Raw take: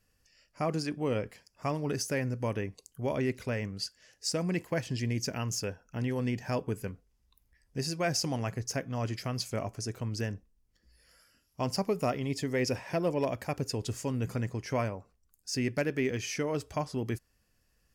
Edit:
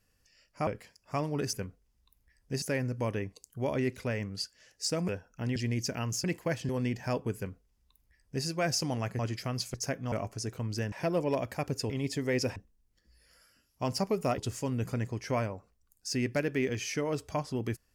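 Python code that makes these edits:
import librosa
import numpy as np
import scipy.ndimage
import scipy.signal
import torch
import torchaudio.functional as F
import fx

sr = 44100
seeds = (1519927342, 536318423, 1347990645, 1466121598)

y = fx.edit(x, sr, fx.cut(start_s=0.67, length_s=0.51),
    fx.swap(start_s=4.5, length_s=0.45, other_s=5.63, other_length_s=0.48),
    fx.duplicate(start_s=6.78, length_s=1.09, to_s=2.04),
    fx.move(start_s=8.61, length_s=0.38, to_s=9.54),
    fx.swap(start_s=10.34, length_s=1.82, other_s=12.82, other_length_s=0.98), tone=tone)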